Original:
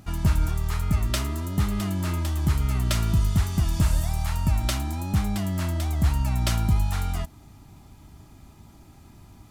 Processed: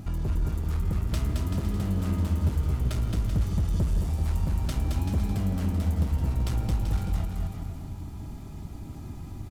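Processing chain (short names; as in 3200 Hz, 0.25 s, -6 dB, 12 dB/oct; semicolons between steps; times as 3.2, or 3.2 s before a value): low shelf 500 Hz +9.5 dB; compressor 2:1, threshold -33 dBFS, peak gain reduction 14 dB; hard clip -25 dBFS, distortion -11 dB; bouncing-ball echo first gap 0.22 s, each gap 0.75×, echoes 5; reverb RT60 3.4 s, pre-delay 0.108 s, DRR 13 dB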